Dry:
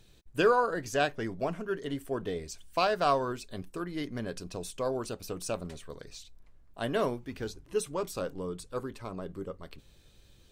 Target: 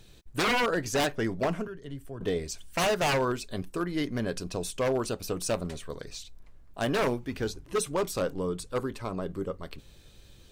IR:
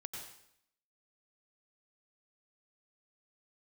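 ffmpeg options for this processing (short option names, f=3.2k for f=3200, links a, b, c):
-filter_complex "[0:a]asettb=1/sr,asplit=3[a][b][c];[a]atrim=end=1.674[d];[b]atrim=start=1.67:end=2.21,asetpts=PTS-STARTPTS,afade=t=in:d=0.004:c=qsin,afade=t=out:st=0.536:d=0.004:c=qsin,acrossover=split=140[e][f];[f]acompressor=threshold=-54dB:ratio=2.5[g];[e][g]amix=inputs=2:normalize=0[h];[c]atrim=start=2.206[i];[d][h]acrossfade=d=0.004:c1=hsin:c2=qsin[j];[j][i]acrossfade=d=0.004:c1=qsin:c2=hsin,aeval=exprs='0.0531*(abs(mod(val(0)/0.0531+3,4)-2)-1)':c=same,volume=5.5dB"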